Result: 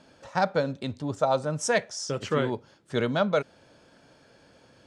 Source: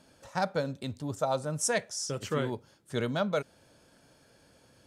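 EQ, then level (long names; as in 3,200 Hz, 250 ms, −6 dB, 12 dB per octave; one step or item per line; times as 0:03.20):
high-frequency loss of the air 88 metres
low-shelf EQ 130 Hz −6.5 dB
+6.0 dB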